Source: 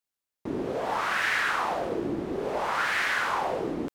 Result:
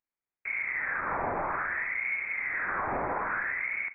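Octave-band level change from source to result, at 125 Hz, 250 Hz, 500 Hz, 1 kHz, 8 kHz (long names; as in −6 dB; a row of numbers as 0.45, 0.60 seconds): −5.5 dB, −11.5 dB, −8.0 dB, −4.0 dB, below −35 dB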